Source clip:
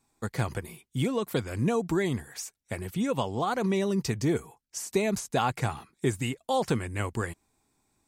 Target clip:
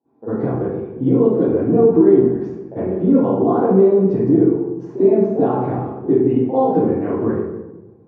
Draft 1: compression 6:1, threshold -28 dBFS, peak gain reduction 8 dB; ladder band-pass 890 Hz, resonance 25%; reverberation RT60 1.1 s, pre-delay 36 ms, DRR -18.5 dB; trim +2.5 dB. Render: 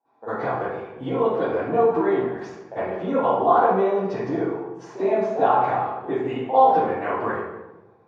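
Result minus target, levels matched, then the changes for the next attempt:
1 kHz band +11.5 dB
change: ladder band-pass 440 Hz, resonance 25%

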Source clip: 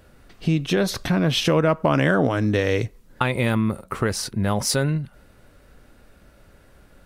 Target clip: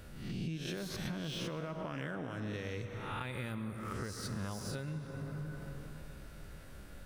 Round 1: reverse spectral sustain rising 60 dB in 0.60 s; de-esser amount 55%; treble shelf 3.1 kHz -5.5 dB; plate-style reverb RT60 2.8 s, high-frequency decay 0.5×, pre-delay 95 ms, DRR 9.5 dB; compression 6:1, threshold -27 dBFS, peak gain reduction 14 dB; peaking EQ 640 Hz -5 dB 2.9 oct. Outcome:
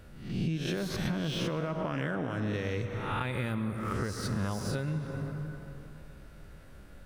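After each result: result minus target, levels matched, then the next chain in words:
compression: peak gain reduction -7.5 dB; 8 kHz band -4.5 dB
reverse spectral sustain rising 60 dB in 0.60 s; de-esser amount 55%; treble shelf 3.1 kHz -5.5 dB; plate-style reverb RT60 2.8 s, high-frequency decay 0.5×, pre-delay 95 ms, DRR 9.5 dB; compression 6:1, threshold -36 dBFS, peak gain reduction 21.5 dB; peaking EQ 640 Hz -5 dB 2.9 oct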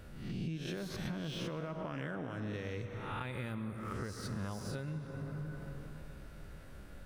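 8 kHz band -4.0 dB
reverse spectral sustain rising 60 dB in 0.60 s; de-esser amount 55%; plate-style reverb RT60 2.8 s, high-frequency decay 0.5×, pre-delay 95 ms, DRR 9.5 dB; compression 6:1, threshold -36 dBFS, peak gain reduction 21.5 dB; peaking EQ 640 Hz -5 dB 2.9 oct

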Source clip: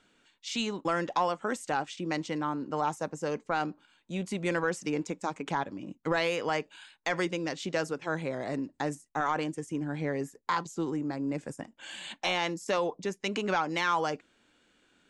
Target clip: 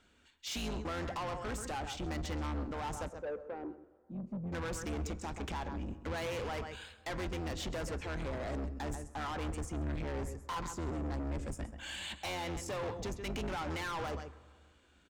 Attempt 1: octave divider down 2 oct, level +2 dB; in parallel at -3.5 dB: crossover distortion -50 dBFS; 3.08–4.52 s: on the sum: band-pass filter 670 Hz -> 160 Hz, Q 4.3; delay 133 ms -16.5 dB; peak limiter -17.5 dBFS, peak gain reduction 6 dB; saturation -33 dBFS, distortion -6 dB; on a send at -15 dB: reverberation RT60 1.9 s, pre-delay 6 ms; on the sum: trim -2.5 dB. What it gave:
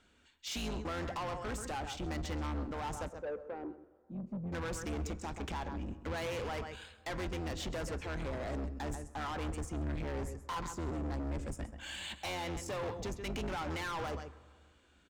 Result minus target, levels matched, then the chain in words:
crossover distortion: distortion +9 dB
octave divider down 2 oct, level +2 dB; in parallel at -3.5 dB: crossover distortion -60 dBFS; 3.08–4.52 s: on the sum: band-pass filter 670 Hz -> 160 Hz, Q 4.3; delay 133 ms -16.5 dB; peak limiter -17.5 dBFS, peak gain reduction 6 dB; saturation -33 dBFS, distortion -6 dB; on a send at -15 dB: reverberation RT60 1.9 s, pre-delay 6 ms; on the sum: trim -2.5 dB

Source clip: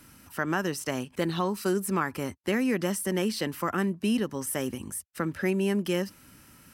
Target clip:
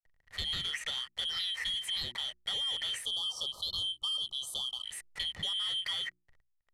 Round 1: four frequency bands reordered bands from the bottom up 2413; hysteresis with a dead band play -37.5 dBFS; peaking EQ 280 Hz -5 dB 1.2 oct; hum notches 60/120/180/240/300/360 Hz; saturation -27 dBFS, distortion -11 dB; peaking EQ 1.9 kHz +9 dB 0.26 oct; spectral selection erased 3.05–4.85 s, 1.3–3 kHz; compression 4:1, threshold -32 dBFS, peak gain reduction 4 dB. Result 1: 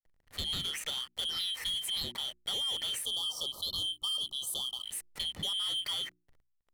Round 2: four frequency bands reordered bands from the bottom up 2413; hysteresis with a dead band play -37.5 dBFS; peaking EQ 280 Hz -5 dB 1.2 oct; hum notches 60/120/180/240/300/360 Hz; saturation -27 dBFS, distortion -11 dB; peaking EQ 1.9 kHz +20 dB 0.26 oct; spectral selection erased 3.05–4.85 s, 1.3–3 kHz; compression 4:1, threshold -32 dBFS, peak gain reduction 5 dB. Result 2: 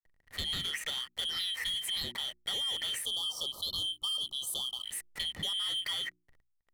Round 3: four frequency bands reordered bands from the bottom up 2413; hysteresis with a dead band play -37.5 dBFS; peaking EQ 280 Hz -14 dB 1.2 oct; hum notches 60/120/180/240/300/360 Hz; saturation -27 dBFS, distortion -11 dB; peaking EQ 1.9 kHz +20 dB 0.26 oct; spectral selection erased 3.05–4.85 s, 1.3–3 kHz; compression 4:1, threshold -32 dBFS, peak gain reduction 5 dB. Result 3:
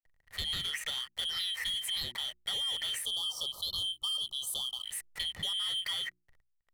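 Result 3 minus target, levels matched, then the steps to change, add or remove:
8 kHz band +4.0 dB
add after compression: low-pass 8.1 kHz 12 dB/octave

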